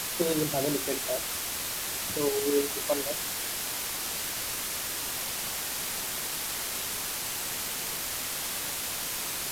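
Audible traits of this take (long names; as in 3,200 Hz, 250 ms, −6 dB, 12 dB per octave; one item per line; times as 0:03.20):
tremolo saw up 9.2 Hz, depth 55%
a quantiser's noise floor 6 bits, dither triangular
Ogg Vorbis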